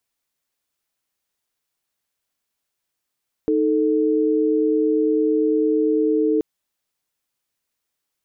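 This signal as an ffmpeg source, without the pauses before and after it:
ffmpeg -f lavfi -i "aevalsrc='0.119*(sin(2*PI*311.13*t)+sin(2*PI*440*t))':duration=2.93:sample_rate=44100" out.wav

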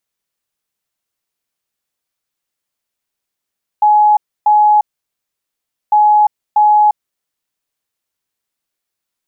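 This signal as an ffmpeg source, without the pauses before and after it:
ffmpeg -f lavfi -i "aevalsrc='0.501*sin(2*PI*842*t)*clip(min(mod(mod(t,2.1),0.64),0.35-mod(mod(t,2.1),0.64))/0.005,0,1)*lt(mod(t,2.1),1.28)':duration=4.2:sample_rate=44100" out.wav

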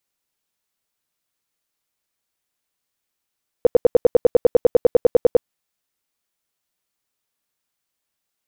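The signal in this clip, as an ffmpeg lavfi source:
ffmpeg -f lavfi -i "aevalsrc='0.473*sin(2*PI*486*mod(t,0.1))*lt(mod(t,0.1),8/486)':duration=1.8:sample_rate=44100" out.wav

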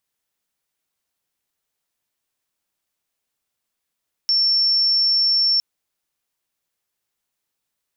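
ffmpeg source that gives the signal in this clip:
ffmpeg -f lavfi -i "sine=frequency=5420:duration=1.31:sample_rate=44100,volume=3.56dB" out.wav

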